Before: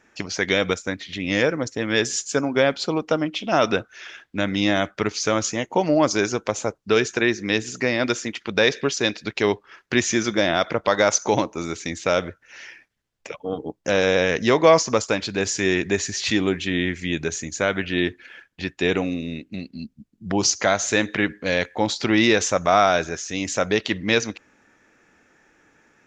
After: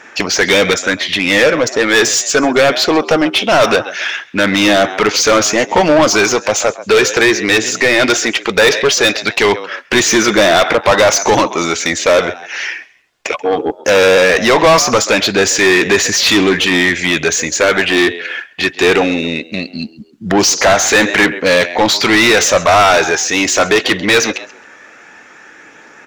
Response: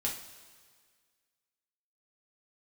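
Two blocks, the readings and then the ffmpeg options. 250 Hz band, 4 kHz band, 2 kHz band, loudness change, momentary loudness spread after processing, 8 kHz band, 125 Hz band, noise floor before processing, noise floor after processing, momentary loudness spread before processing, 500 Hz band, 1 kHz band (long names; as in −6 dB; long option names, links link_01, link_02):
+8.0 dB, +12.5 dB, +12.5 dB, +10.5 dB, 9 LU, +12.0 dB, +5.0 dB, −64 dBFS, −41 dBFS, 12 LU, +10.0 dB, +10.5 dB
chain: -filter_complex "[0:a]asplit=3[link_01][link_02][link_03];[link_02]adelay=134,afreqshift=78,volume=-23dB[link_04];[link_03]adelay=268,afreqshift=156,volume=-32.1dB[link_05];[link_01][link_04][link_05]amix=inputs=3:normalize=0,aphaser=in_gain=1:out_gain=1:delay=2.8:decay=0.22:speed=0.19:type=sinusoidal,asplit=2[link_06][link_07];[link_07]highpass=frequency=720:poles=1,volume=26dB,asoftclip=type=tanh:threshold=-2.5dB[link_08];[link_06][link_08]amix=inputs=2:normalize=0,lowpass=frequency=4700:poles=1,volume=-6dB,volume=1.5dB"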